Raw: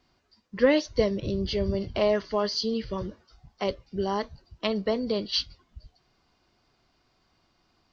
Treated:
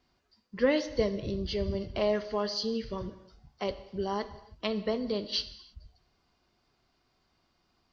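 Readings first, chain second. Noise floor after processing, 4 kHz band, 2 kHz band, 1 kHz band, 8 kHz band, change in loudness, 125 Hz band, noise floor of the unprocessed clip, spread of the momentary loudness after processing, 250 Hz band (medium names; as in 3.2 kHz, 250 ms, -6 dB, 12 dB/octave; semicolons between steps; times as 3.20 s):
-74 dBFS, -4.0 dB, -4.0 dB, -4.0 dB, no reading, -4.5 dB, -4.5 dB, -70 dBFS, 11 LU, -4.0 dB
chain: gated-style reverb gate 350 ms falling, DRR 11.5 dB; trim -4.5 dB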